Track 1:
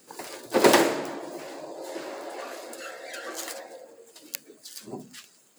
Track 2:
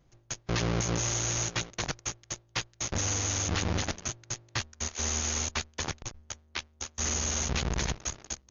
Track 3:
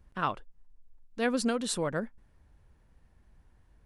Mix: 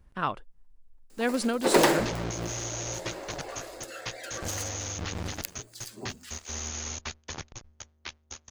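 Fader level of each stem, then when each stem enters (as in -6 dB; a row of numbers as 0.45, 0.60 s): -3.0, -5.0, +1.0 dB; 1.10, 1.50, 0.00 s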